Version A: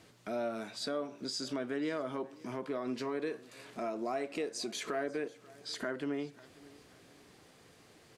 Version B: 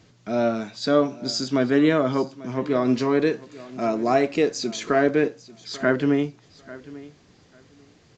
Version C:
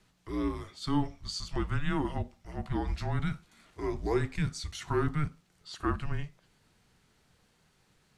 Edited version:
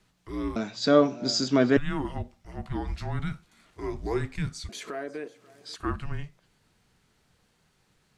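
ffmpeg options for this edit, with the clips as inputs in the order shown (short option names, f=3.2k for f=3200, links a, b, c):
-filter_complex "[2:a]asplit=3[a][b][c];[a]atrim=end=0.562[d];[1:a]atrim=start=0.558:end=1.772[e];[b]atrim=start=1.768:end=4.692[f];[0:a]atrim=start=4.688:end=5.762[g];[c]atrim=start=5.758[h];[d][e]acrossfade=d=0.004:c1=hsin:c2=hsin[i];[i][f]acrossfade=d=0.004:c1=hsin:c2=hsin[j];[j][g]acrossfade=d=0.004:c1=hsin:c2=hsin[k];[k][h]acrossfade=d=0.004:c1=hsin:c2=hsin"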